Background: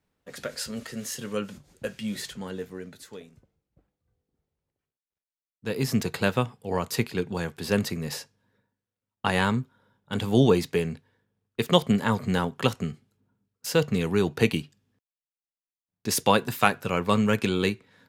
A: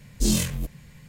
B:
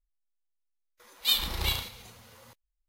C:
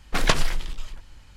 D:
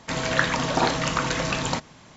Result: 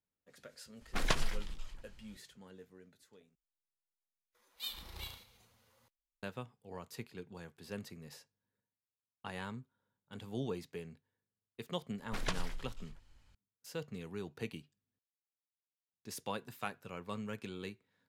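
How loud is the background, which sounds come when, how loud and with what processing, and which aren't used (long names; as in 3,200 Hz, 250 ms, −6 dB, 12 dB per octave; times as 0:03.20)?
background −19.5 dB
0:00.81: mix in C −11.5 dB
0:03.35: overwrite with B −17 dB
0:11.99: mix in C −16.5 dB
not used: A, D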